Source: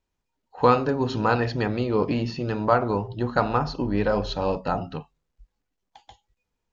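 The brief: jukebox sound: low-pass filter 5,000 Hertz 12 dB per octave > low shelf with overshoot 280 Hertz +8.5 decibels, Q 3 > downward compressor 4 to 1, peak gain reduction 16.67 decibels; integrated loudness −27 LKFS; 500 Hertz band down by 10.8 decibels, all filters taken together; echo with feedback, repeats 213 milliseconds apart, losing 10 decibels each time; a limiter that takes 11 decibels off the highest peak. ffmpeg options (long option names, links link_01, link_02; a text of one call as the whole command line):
ffmpeg -i in.wav -af "equalizer=frequency=500:width_type=o:gain=-8.5,alimiter=limit=-18.5dB:level=0:latency=1,lowpass=5000,lowshelf=frequency=280:width_type=q:width=3:gain=8.5,aecho=1:1:213|426|639|852:0.316|0.101|0.0324|0.0104,acompressor=threshold=-33dB:ratio=4,volume=7.5dB" out.wav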